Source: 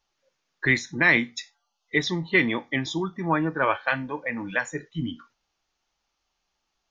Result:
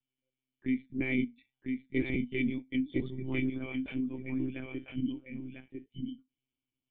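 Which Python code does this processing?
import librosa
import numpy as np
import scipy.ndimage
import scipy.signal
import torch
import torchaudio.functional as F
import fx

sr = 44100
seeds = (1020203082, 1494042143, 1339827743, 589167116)

p1 = fx.law_mismatch(x, sr, coded='mu', at=(3.53, 4.85))
p2 = fx.formant_cascade(p1, sr, vowel='i')
p3 = fx.dynamic_eq(p2, sr, hz=470.0, q=1.1, threshold_db=-47.0, ratio=4.0, max_db=6, at=(0.96, 2.1), fade=0.02)
p4 = p3 + fx.echo_single(p3, sr, ms=1000, db=-4.0, dry=0)
y = fx.lpc_monotone(p4, sr, seeds[0], pitch_hz=130.0, order=16)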